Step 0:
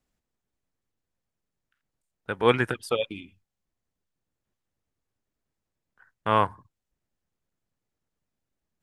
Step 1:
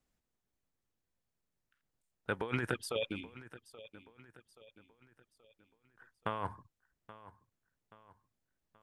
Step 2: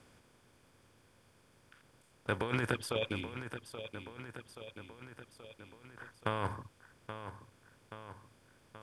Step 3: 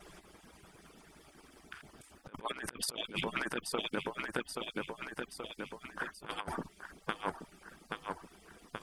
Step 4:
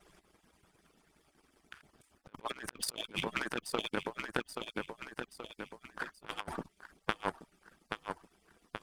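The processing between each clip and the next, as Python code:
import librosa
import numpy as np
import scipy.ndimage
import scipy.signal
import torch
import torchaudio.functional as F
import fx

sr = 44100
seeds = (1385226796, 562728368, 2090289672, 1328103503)

y1 = fx.over_compress(x, sr, threshold_db=-28.0, ratio=-1.0)
y1 = fx.echo_feedback(y1, sr, ms=828, feedback_pct=44, wet_db=-17.0)
y1 = y1 * 10.0 ** (-7.5 / 20.0)
y2 = fx.bin_compress(y1, sr, power=0.6)
y2 = fx.peak_eq(y2, sr, hz=97.0, db=5.5, octaves=0.54)
y2 = y2 * 10.0 ** (-1.0 / 20.0)
y3 = fx.hpss_only(y2, sr, part='percussive')
y3 = fx.over_compress(y3, sr, threshold_db=-45.0, ratio=-0.5)
y3 = y3 * 10.0 ** (8.5 / 20.0)
y4 = fx.power_curve(y3, sr, exponent=1.4)
y4 = y4 * 10.0 ** (6.0 / 20.0)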